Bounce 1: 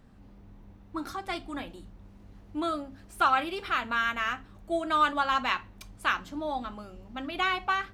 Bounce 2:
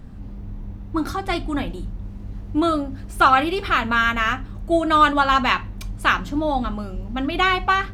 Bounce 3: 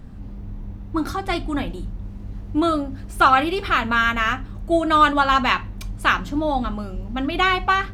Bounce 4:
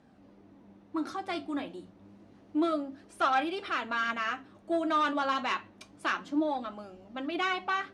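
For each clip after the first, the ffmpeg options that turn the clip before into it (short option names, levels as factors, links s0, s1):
-af "lowshelf=f=230:g=11.5,volume=2.66"
-af anull
-af "asoftclip=type=tanh:threshold=0.299,highpass=280,equalizer=f=310:t=q:w=4:g=6,equalizer=f=620:t=q:w=4:g=4,equalizer=f=7600:t=q:w=4:g=-4,lowpass=f=9600:w=0.5412,lowpass=f=9600:w=1.3066,flanger=delay=1.2:depth=9.9:regen=61:speed=0.29:shape=sinusoidal,volume=0.501"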